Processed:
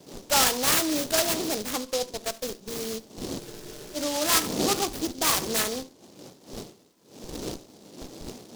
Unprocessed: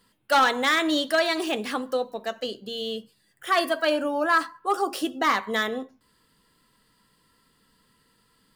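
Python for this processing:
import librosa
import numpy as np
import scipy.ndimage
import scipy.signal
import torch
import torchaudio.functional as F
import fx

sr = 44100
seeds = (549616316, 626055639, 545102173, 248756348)

p1 = fx.dmg_wind(x, sr, seeds[0], corner_hz=360.0, level_db=-34.0)
p2 = fx.bandpass_edges(p1, sr, low_hz=220.0, high_hz=3300.0)
p3 = fx.schmitt(p2, sr, flips_db=-31.5)
p4 = p2 + (p3 * librosa.db_to_amplitude(-10.5))
p5 = fx.peak_eq(p4, sr, hz=2100.0, db=5.0, octaves=0.77)
p6 = p5 + 10.0 ** (-20.5 / 20.0) * np.pad(p5, (int(72 * sr / 1000.0), 0))[:len(p5)]
p7 = fx.spec_freeze(p6, sr, seeds[1], at_s=3.42, hold_s=0.55)
p8 = fx.noise_mod_delay(p7, sr, seeds[2], noise_hz=4800.0, depth_ms=0.16)
y = p8 * librosa.db_to_amplitude(-3.5)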